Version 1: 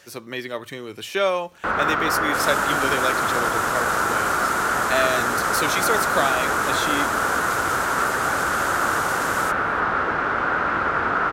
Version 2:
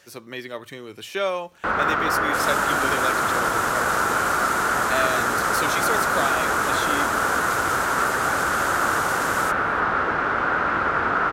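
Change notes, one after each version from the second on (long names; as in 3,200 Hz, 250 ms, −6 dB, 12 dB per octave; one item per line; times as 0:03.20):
speech −3.5 dB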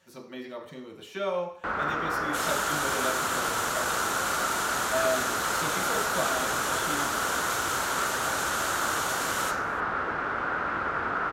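speech −11.5 dB
first sound −7.5 dB
reverb: on, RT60 0.55 s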